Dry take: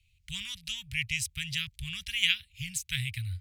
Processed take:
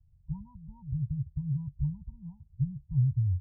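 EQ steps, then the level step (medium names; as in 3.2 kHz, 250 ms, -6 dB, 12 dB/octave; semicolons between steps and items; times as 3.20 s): brick-wall FIR low-pass 1 kHz; peaking EQ 140 Hz +7 dB 0.35 oct; +6.5 dB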